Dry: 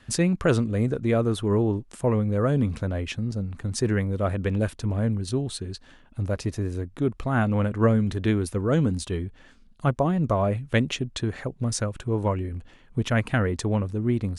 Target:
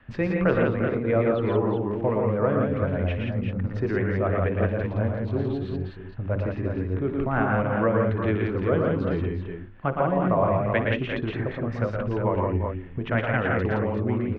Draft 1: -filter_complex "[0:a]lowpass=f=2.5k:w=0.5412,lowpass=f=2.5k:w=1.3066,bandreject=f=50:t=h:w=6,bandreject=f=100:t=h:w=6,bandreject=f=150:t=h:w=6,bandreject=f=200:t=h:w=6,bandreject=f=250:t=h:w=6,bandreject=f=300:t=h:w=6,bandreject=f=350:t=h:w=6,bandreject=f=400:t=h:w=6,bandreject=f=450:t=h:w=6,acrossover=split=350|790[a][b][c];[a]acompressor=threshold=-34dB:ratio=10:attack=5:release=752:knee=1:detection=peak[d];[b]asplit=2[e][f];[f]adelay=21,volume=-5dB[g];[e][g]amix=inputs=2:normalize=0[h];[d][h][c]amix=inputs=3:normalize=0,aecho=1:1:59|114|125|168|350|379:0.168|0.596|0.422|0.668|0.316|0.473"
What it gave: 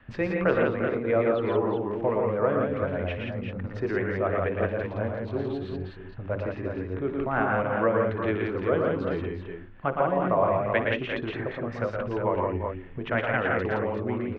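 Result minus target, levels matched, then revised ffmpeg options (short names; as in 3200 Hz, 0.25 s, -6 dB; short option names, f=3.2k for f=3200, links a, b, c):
compressor: peak gain reduction +7.5 dB
-filter_complex "[0:a]lowpass=f=2.5k:w=0.5412,lowpass=f=2.5k:w=1.3066,bandreject=f=50:t=h:w=6,bandreject=f=100:t=h:w=6,bandreject=f=150:t=h:w=6,bandreject=f=200:t=h:w=6,bandreject=f=250:t=h:w=6,bandreject=f=300:t=h:w=6,bandreject=f=350:t=h:w=6,bandreject=f=400:t=h:w=6,bandreject=f=450:t=h:w=6,acrossover=split=350|790[a][b][c];[a]acompressor=threshold=-25.5dB:ratio=10:attack=5:release=752:knee=1:detection=peak[d];[b]asplit=2[e][f];[f]adelay=21,volume=-5dB[g];[e][g]amix=inputs=2:normalize=0[h];[d][h][c]amix=inputs=3:normalize=0,aecho=1:1:59|114|125|168|350|379:0.168|0.596|0.422|0.668|0.316|0.473"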